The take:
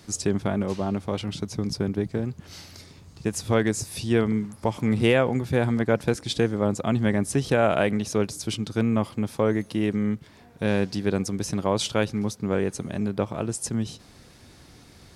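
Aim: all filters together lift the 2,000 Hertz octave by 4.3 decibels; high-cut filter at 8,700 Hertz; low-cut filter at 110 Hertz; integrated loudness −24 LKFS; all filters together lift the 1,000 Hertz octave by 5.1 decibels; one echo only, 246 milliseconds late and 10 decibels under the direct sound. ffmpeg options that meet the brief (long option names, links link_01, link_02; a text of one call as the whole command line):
ffmpeg -i in.wav -af "highpass=110,lowpass=8700,equalizer=frequency=1000:width_type=o:gain=6,equalizer=frequency=2000:width_type=o:gain=3.5,aecho=1:1:246:0.316,volume=0.5dB" out.wav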